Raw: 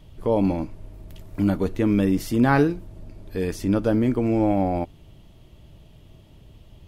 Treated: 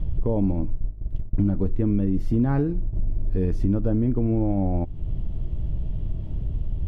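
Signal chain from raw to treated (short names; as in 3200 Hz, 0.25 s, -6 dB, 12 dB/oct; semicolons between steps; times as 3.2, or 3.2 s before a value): 0.61–2.93 gate -37 dBFS, range -26 dB; tilt -4.5 dB/oct; compressor 6:1, threshold -24 dBFS, peak gain reduction 18.5 dB; gain +4.5 dB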